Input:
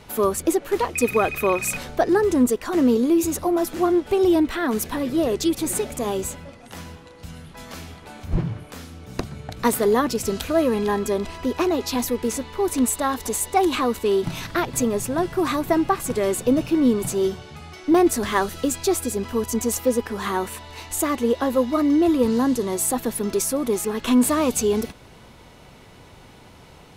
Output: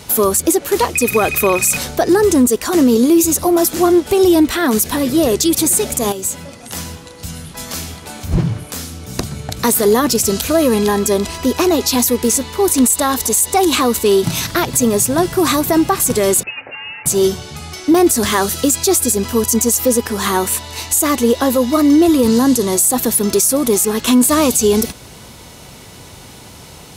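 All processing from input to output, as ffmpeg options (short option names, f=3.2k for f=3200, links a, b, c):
-filter_complex "[0:a]asettb=1/sr,asplit=3[a][b][c];[a]atrim=end=6.124[d];[b]atrim=start=6.12:end=6.61,asetpts=PTS-STARTPTS,afade=t=in:d=0.004:c=qsin,afade=t=out:st=0.486:d=0.004:c=qsin,highpass=93,acompressor=threshold=-36dB:ratio=2.5:attack=3.2:release=140:knee=1:detection=peak[e];[c]atrim=start=6.606[f];[d][e]acrossfade=d=0.004:c1=hsin:c2=qsin[g];[g][f]acrossfade=d=0.004:c1=qsin:c2=hsin,asettb=1/sr,asplit=3[h][i][j];[h]atrim=end=16.434[k];[i]atrim=start=16.43:end=17.06,asetpts=PTS-STARTPTS,afade=t=in:d=0.004:c=qsin,afade=t=out:st=0.626:d=0.004:c=qsin,highpass=1.2k,lowpass=f=2.6k:t=q:w=0.5098,lowpass=f=2.6k:t=q:w=0.6013,lowpass=f=2.6k:t=q:w=0.9,lowpass=f=2.6k:t=q:w=2.563,afreqshift=-3100[l];[j]atrim=start=17.056[m];[k][l]acrossfade=d=0.004:c1=hsin:c2=qsin[n];[n][m]acrossfade=d=0.004:c1=qsin:c2=hsin,highpass=45,bass=f=250:g=2,treble=f=4k:g=12,alimiter=level_in=10.5dB:limit=-1dB:release=50:level=0:latency=1,volume=-3dB"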